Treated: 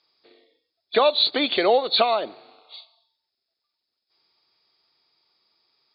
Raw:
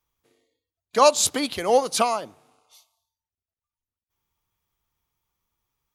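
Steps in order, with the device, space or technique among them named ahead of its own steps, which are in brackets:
hearing aid with frequency lowering (hearing-aid frequency compression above 3,300 Hz 4 to 1; downward compressor 4 to 1, threshold −27 dBFS, peak gain reduction 14 dB; loudspeaker in its box 300–6,000 Hz, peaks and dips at 370 Hz +5 dB, 660 Hz +4 dB, 1,000 Hz −4 dB, 2,400 Hz +3 dB)
level +9 dB

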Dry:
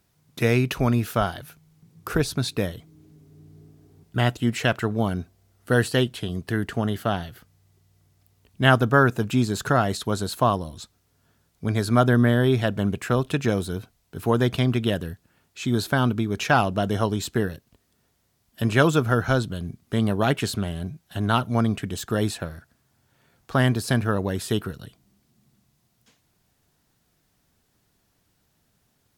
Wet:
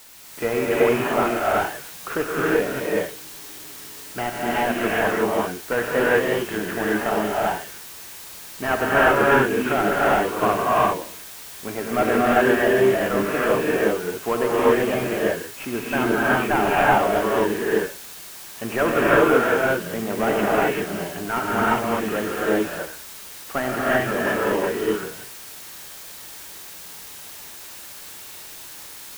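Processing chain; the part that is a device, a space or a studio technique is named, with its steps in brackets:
army field radio (band-pass filter 350–2,800 Hz; variable-slope delta modulation 16 kbit/s; white noise bed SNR 17 dB)
reverb whose tail is shaped and stops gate 410 ms rising, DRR −7 dB
level +2 dB

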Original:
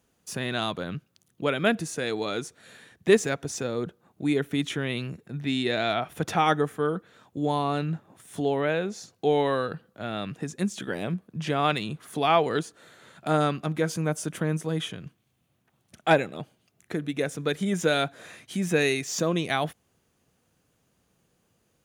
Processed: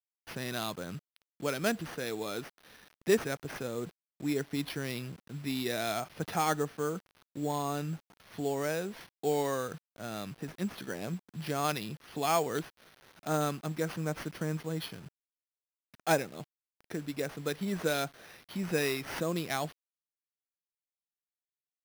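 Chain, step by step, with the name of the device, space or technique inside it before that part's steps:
early 8-bit sampler (sample-rate reduction 7,600 Hz, jitter 0%; bit reduction 8 bits)
level −7 dB

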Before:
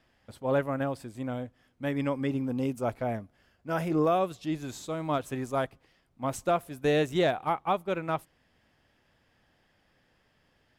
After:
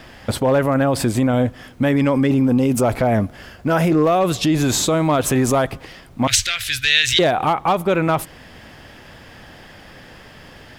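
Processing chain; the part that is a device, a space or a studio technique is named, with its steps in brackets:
loud club master (downward compressor 2.5 to 1, threshold −30 dBFS, peak gain reduction 6.5 dB; hard clipping −25 dBFS, distortion −24 dB; boost into a limiter +35.5 dB)
0:06.27–0:07.19: drawn EQ curve 110 Hz 0 dB, 170 Hz −29 dB, 1,000 Hz −23 dB, 1,600 Hz +6 dB, 3,900 Hz +15 dB, 11,000 Hz −3 dB
level −9 dB

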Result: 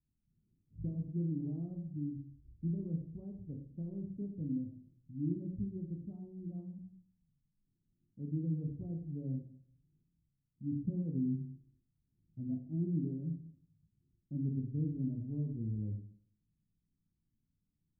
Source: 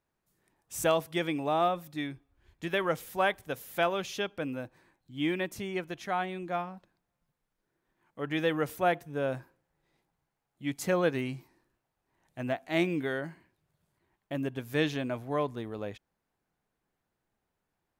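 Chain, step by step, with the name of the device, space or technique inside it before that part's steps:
club heard from the street (brickwall limiter −21 dBFS, peak gain reduction 9 dB; low-pass filter 220 Hz 24 dB per octave; convolution reverb RT60 0.55 s, pre-delay 16 ms, DRR 1.5 dB)
level +2.5 dB

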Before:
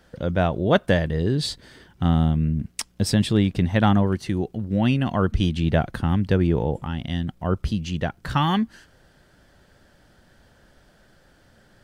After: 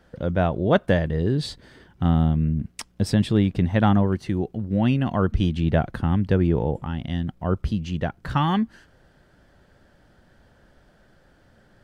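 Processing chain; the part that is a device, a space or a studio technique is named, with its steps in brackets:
behind a face mask (high-shelf EQ 2,900 Hz −8 dB)

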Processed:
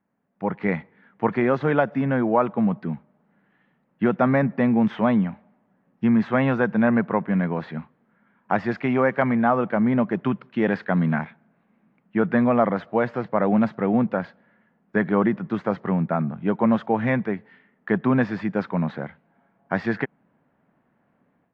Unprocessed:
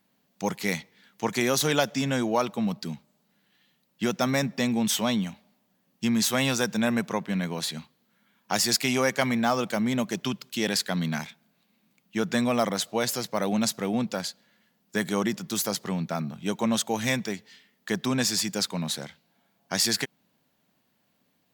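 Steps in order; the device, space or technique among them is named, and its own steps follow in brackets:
action camera in a waterproof case (low-pass filter 1,800 Hz 24 dB per octave; automatic gain control gain up to 11 dB; level −3.5 dB; AAC 64 kbit/s 24,000 Hz)

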